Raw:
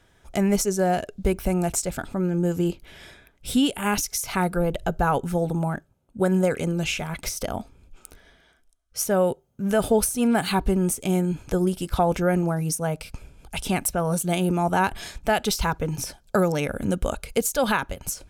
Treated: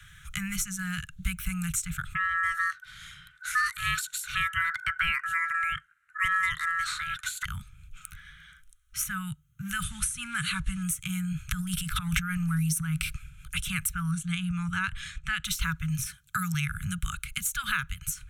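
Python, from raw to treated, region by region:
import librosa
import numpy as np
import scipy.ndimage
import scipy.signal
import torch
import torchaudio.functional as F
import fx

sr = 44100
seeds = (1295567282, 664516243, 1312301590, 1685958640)

y = fx.chain(x, sr, fx.lowpass(hz=11000.0, slope=24),
    fx.ring_mod(carrier_hz=1500.0), at=(2.15, 7.45))
y = fx.chain(y, sr, fx.block_float(bits=7),
    fx.resample_bad(factor=2, down='none', up='filtered'), at=(9.83, 10.83))
y = fx.chain(y, sr, fx.notch(hz=6700.0, q=15.0),
    fx.transient(attack_db=-8, sustain_db=11), at=(11.5, 13.14))
y = fx.chain(y, sr, fx.lowpass(hz=9900.0, slope=24),
    fx.high_shelf(hz=4600.0, db=-9.5), at=(14.11, 15.44))
y = fx.chain(y, sr, fx.highpass(hz=91.0, slope=12),
    fx.high_shelf(hz=7800.0, db=4.5), at=(16.06, 16.54))
y = scipy.signal.sosfilt(scipy.signal.cheby1(4, 1.0, [160.0, 1300.0], 'bandstop', fs=sr, output='sos'), y)
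y = fx.peak_eq(y, sr, hz=4900.0, db=-14.5, octaves=0.27)
y = fx.band_squash(y, sr, depth_pct=40)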